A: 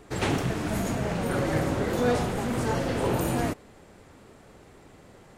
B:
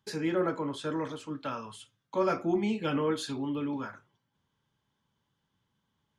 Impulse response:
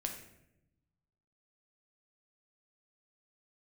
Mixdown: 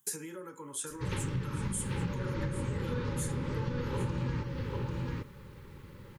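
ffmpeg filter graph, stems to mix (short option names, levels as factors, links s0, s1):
-filter_complex "[0:a]lowpass=f=5200:w=0.5412,lowpass=f=5200:w=1.3066,adelay=900,volume=0.596,asplit=3[s0][s1][s2];[s1]volume=0.447[s3];[s2]volume=0.473[s4];[1:a]highpass=250,acompressor=threshold=0.01:ratio=12,aexciter=amount=11.1:drive=6.8:freq=6700,volume=0.841,asplit=4[s5][s6][s7][s8];[s6]volume=0.178[s9];[s7]volume=0.224[s10];[s8]apad=whole_len=276554[s11];[s0][s11]sidechaincompress=threshold=0.002:ratio=8:attack=16:release=163[s12];[2:a]atrim=start_sample=2205[s13];[s3][s9]amix=inputs=2:normalize=0[s14];[s14][s13]afir=irnorm=-1:irlink=0[s15];[s4][s10]amix=inputs=2:normalize=0,aecho=0:1:793:1[s16];[s12][s5][s15][s16]amix=inputs=4:normalize=0,asuperstop=centerf=690:order=20:qfactor=3,lowshelf=f=190:t=q:w=1.5:g=6.5,acompressor=threshold=0.0316:ratio=6"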